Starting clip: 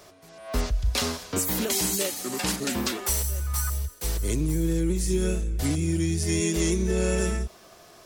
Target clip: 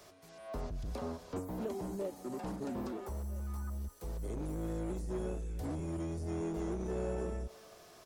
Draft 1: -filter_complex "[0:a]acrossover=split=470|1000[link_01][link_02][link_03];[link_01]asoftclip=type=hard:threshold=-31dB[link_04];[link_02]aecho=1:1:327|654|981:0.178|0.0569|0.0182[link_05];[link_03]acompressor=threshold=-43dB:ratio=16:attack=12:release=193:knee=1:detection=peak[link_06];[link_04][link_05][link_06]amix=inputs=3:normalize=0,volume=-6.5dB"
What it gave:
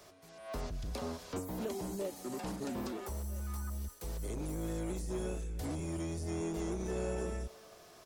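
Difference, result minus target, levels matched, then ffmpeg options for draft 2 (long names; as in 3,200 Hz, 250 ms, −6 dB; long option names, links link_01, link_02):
downward compressor: peak gain reduction −8 dB
-filter_complex "[0:a]acrossover=split=470|1000[link_01][link_02][link_03];[link_01]asoftclip=type=hard:threshold=-31dB[link_04];[link_02]aecho=1:1:327|654|981:0.178|0.0569|0.0182[link_05];[link_03]acompressor=threshold=-51.5dB:ratio=16:attack=12:release=193:knee=1:detection=peak[link_06];[link_04][link_05][link_06]amix=inputs=3:normalize=0,volume=-6.5dB"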